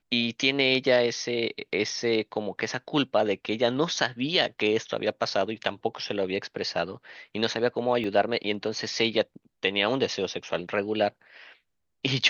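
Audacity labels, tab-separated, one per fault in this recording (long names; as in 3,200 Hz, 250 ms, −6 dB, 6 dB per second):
8.040000	8.040000	drop-out 2.8 ms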